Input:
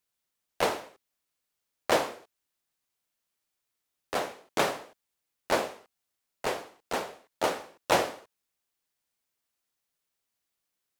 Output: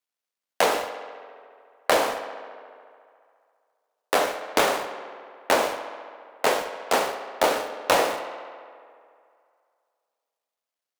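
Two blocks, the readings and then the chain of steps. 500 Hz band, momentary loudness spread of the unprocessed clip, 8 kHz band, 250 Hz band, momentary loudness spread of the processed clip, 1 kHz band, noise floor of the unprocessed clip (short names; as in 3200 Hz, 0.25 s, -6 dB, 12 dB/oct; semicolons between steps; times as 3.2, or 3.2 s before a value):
+6.5 dB, 13 LU, +7.0 dB, +3.5 dB, 19 LU, +7.0 dB, -84 dBFS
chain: switching dead time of 0.071 ms; HPF 260 Hz 12 dB/oct; notch 360 Hz, Q 12; sample leveller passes 2; compressor, threshold -23 dBFS, peak gain reduction 8.5 dB; tape echo 70 ms, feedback 84%, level -12 dB, low-pass 5900 Hz; gain +6 dB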